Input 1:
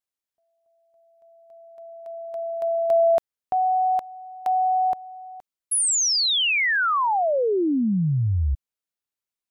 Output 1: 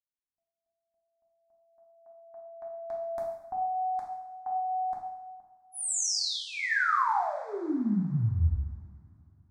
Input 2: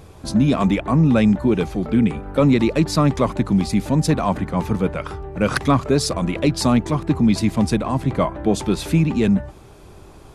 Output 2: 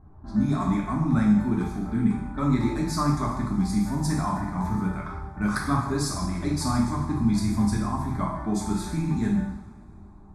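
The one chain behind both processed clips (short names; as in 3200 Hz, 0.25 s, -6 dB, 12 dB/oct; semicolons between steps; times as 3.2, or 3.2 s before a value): low-pass opened by the level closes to 710 Hz, open at -16.5 dBFS; fixed phaser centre 1200 Hz, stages 4; two-slope reverb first 0.8 s, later 3 s, from -22 dB, DRR -3 dB; gain -8 dB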